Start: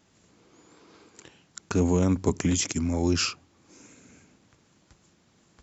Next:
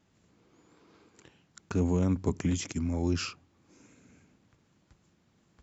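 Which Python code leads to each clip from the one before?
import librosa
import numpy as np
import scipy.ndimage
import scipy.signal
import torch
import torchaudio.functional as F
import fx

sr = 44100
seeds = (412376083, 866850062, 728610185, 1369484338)

y = fx.bass_treble(x, sr, bass_db=4, treble_db=-5)
y = y * 10.0 ** (-6.5 / 20.0)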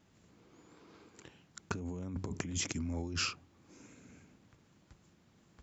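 y = fx.over_compress(x, sr, threshold_db=-34.0, ratio=-1.0)
y = y * 10.0 ** (-3.5 / 20.0)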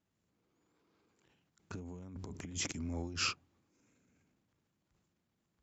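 y = fx.transient(x, sr, attack_db=-6, sustain_db=7)
y = fx.upward_expand(y, sr, threshold_db=-46.0, expansion=2.5)
y = y * 10.0 ** (2.5 / 20.0)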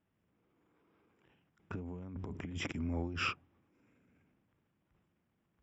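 y = scipy.signal.savgol_filter(x, 25, 4, mode='constant')
y = y * 10.0 ** (3.0 / 20.0)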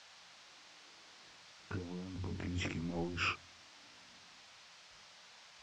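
y = fx.chorus_voices(x, sr, voices=2, hz=1.0, base_ms=20, depth_ms=3.0, mix_pct=40)
y = fx.dmg_noise_band(y, sr, seeds[0], low_hz=550.0, high_hz=5700.0, level_db=-62.0)
y = y * 10.0 ** (3.0 / 20.0)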